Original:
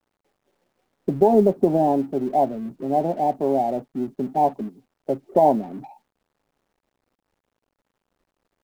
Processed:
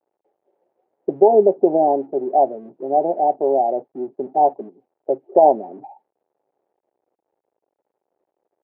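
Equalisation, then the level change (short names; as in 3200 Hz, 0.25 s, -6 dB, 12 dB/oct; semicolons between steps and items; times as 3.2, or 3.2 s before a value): BPF 130–2100 Hz; band shelf 540 Hz +14.5 dB; -10.0 dB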